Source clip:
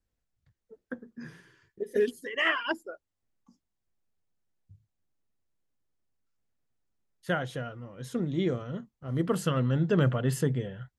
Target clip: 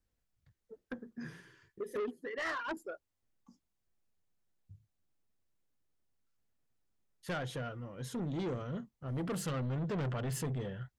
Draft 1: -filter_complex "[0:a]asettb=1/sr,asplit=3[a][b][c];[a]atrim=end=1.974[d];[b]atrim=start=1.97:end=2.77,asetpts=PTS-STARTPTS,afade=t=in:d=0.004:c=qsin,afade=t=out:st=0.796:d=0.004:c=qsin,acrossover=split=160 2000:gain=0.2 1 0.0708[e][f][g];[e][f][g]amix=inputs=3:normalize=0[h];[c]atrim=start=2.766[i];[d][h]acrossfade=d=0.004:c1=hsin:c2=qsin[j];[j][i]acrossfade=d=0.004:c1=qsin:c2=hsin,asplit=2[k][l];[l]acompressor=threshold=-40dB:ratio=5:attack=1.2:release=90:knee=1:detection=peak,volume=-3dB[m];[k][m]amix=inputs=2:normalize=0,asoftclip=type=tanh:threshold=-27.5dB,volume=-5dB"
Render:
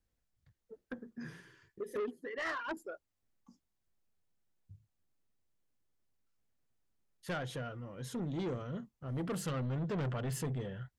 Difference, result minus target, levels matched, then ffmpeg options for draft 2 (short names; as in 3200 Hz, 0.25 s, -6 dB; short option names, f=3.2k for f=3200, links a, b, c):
compressor: peak gain reduction +7 dB
-filter_complex "[0:a]asettb=1/sr,asplit=3[a][b][c];[a]atrim=end=1.974[d];[b]atrim=start=1.97:end=2.77,asetpts=PTS-STARTPTS,afade=t=in:d=0.004:c=qsin,afade=t=out:st=0.796:d=0.004:c=qsin,acrossover=split=160 2000:gain=0.2 1 0.0708[e][f][g];[e][f][g]amix=inputs=3:normalize=0[h];[c]atrim=start=2.766[i];[d][h]acrossfade=d=0.004:c1=hsin:c2=qsin[j];[j][i]acrossfade=d=0.004:c1=qsin:c2=hsin,asplit=2[k][l];[l]acompressor=threshold=-31.5dB:ratio=5:attack=1.2:release=90:knee=1:detection=peak,volume=-3dB[m];[k][m]amix=inputs=2:normalize=0,asoftclip=type=tanh:threshold=-27.5dB,volume=-5dB"